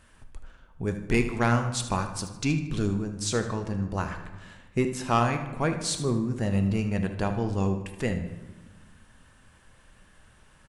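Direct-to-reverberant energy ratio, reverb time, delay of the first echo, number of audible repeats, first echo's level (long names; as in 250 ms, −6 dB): 6.0 dB, 1.2 s, 77 ms, 2, −13.0 dB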